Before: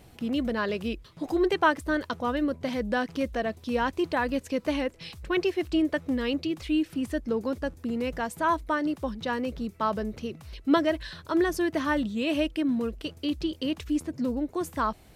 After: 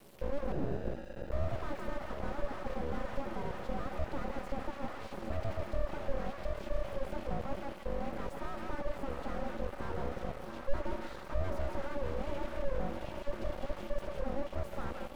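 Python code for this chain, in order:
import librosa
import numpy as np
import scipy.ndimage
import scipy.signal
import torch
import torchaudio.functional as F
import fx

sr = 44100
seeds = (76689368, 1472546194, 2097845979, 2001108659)

p1 = x + fx.echo_diffused(x, sr, ms=801, feedback_pct=61, wet_db=-14, dry=0)
p2 = p1 * np.sin(2.0 * np.pi * 280.0 * np.arange(len(p1)) / sr)
p3 = fx.dynamic_eq(p2, sr, hz=1400.0, q=0.71, threshold_db=-44.0, ratio=4.0, max_db=7)
p4 = np.maximum(p3, 0.0)
p5 = p4 + 10.0 ** (-20.5 / 20.0) * np.pad(p4, (int(161 * sr / 1000.0), 0))[:len(p4)]
p6 = fx.sample_hold(p5, sr, seeds[0], rate_hz=1100.0, jitter_pct=0, at=(0.52, 1.32))
p7 = fx.high_shelf(p6, sr, hz=12000.0, db=10.5)
p8 = fx.slew_limit(p7, sr, full_power_hz=7.1)
y = F.gain(torch.from_numpy(p8), 2.5).numpy()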